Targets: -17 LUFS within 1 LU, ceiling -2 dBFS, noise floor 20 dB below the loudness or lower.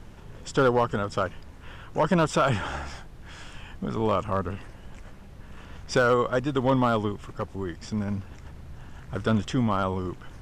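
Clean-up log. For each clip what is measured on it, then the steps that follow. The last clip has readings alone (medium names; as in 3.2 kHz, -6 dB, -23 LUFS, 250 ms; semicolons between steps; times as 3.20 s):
clipped samples 0.3%; clipping level -14.0 dBFS; noise floor -45 dBFS; noise floor target -47 dBFS; loudness -26.5 LUFS; peak level -14.0 dBFS; loudness target -17.0 LUFS
-> clip repair -14 dBFS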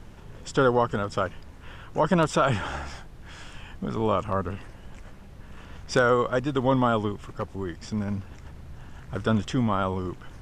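clipped samples 0.0%; noise floor -45 dBFS; noise floor target -47 dBFS
-> noise print and reduce 6 dB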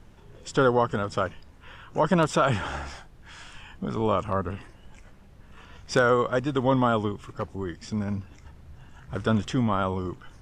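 noise floor -51 dBFS; loudness -26.5 LUFS; peak level -8.0 dBFS; loudness target -17.0 LUFS
-> trim +9.5 dB; peak limiter -2 dBFS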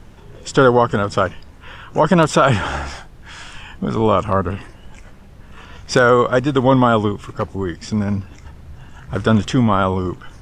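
loudness -17.5 LUFS; peak level -2.0 dBFS; noise floor -42 dBFS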